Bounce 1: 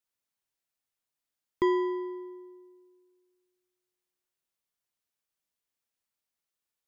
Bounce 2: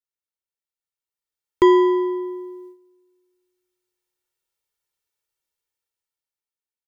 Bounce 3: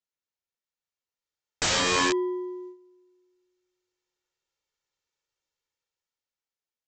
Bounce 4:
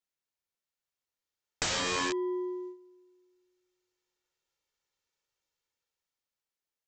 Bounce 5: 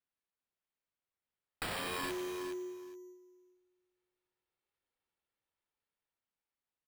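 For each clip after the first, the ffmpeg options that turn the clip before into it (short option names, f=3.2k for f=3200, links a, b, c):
-af "agate=range=-11dB:threshold=-56dB:ratio=16:detection=peak,aecho=1:1:2.2:0.65,dynaudnorm=f=250:g=11:m=14dB"
-af "aresample=16000,aeval=exprs='(mod(9.44*val(0)+1,2)-1)/9.44':c=same,aresample=44100,equalizer=f=530:w=7.7:g=3"
-af "acompressor=threshold=-29dB:ratio=6"
-af "acrusher=samples=7:mix=1:aa=0.000001,aecho=1:1:416|832:0.355|0.0532,volume=-7.5dB"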